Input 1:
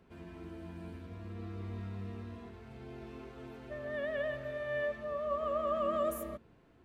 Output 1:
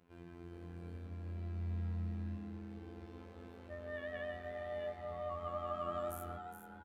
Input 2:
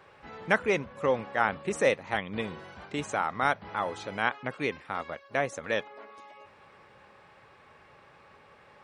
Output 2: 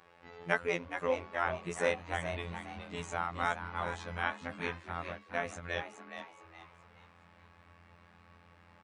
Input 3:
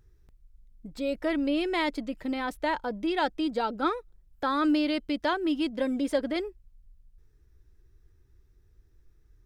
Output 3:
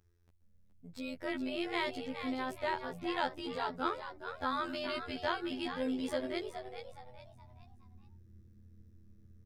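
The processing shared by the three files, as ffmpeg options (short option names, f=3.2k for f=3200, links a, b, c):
-filter_complex "[0:a]highpass=f=64:p=1,afftfilt=real='hypot(re,im)*cos(PI*b)':imag='0':win_size=2048:overlap=0.75,asubboost=boost=8:cutoff=110,asplit=2[a][b];[b]asplit=4[c][d][e][f];[c]adelay=419,afreqshift=120,volume=-9dB[g];[d]adelay=838,afreqshift=240,volume=-18.1dB[h];[e]adelay=1257,afreqshift=360,volume=-27.2dB[i];[f]adelay=1676,afreqshift=480,volume=-36.4dB[j];[g][h][i][j]amix=inputs=4:normalize=0[k];[a][k]amix=inputs=2:normalize=0,volume=-2.5dB"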